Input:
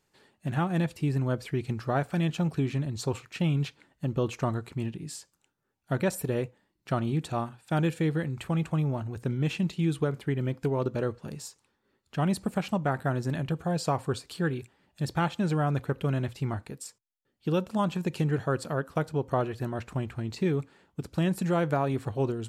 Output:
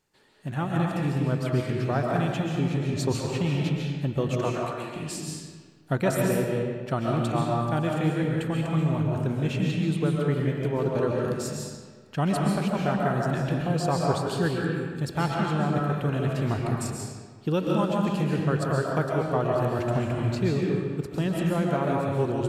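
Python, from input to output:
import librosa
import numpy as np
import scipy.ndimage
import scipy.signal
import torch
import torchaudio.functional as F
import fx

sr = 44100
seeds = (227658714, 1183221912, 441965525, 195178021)

y = fx.rider(x, sr, range_db=4, speed_s=0.5)
y = fx.bessel_highpass(y, sr, hz=510.0, order=8, at=(4.39, 4.96))
y = fx.rev_freeverb(y, sr, rt60_s=1.6, hf_ratio=0.75, predelay_ms=95, drr_db=-2.0)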